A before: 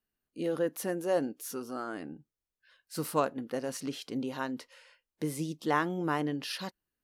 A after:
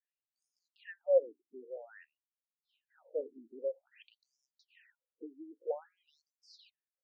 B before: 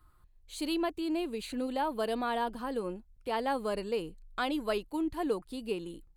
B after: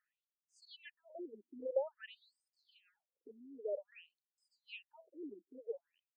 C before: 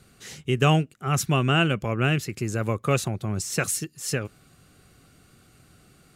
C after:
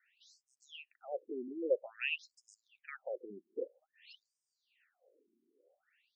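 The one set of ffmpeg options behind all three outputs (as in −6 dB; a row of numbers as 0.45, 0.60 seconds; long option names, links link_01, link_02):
-filter_complex "[0:a]asplit=3[link_01][link_02][link_03];[link_01]bandpass=frequency=530:width_type=q:width=8,volume=0dB[link_04];[link_02]bandpass=frequency=1840:width_type=q:width=8,volume=-6dB[link_05];[link_03]bandpass=frequency=2480:width_type=q:width=8,volume=-9dB[link_06];[link_04][link_05][link_06]amix=inputs=3:normalize=0,afftfilt=real='re*between(b*sr/1024,270*pow(7000/270,0.5+0.5*sin(2*PI*0.51*pts/sr))/1.41,270*pow(7000/270,0.5+0.5*sin(2*PI*0.51*pts/sr))*1.41)':imag='im*between(b*sr/1024,270*pow(7000/270,0.5+0.5*sin(2*PI*0.51*pts/sr))/1.41,270*pow(7000/270,0.5+0.5*sin(2*PI*0.51*pts/sr))*1.41)':win_size=1024:overlap=0.75,volume=5dB"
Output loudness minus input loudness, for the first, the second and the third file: −3.0, −11.5, −15.5 LU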